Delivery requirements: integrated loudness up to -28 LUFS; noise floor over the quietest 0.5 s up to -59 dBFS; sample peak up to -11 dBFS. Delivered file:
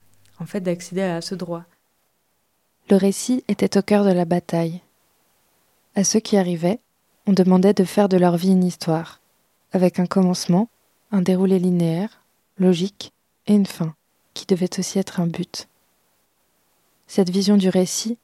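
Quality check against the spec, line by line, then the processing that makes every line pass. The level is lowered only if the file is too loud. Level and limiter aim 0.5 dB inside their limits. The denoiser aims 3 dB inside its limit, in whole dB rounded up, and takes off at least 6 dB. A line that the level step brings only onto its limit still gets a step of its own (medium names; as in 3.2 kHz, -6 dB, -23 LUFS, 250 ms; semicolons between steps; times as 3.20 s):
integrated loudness -20.0 LUFS: fail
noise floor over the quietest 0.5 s -67 dBFS: pass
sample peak -4.0 dBFS: fail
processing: trim -8.5 dB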